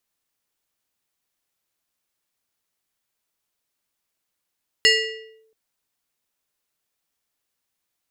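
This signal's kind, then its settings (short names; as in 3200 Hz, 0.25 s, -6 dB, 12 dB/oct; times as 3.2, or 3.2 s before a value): FM tone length 0.68 s, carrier 442 Hz, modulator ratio 5.42, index 2, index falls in 0.61 s linear, decay 0.76 s, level -9.5 dB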